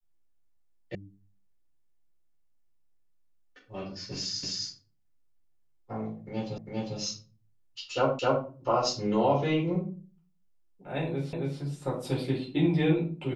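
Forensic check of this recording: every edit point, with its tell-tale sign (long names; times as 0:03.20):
0:00.95: cut off before it has died away
0:04.43: the same again, the last 0.26 s
0:06.58: the same again, the last 0.4 s
0:08.19: the same again, the last 0.26 s
0:11.33: the same again, the last 0.27 s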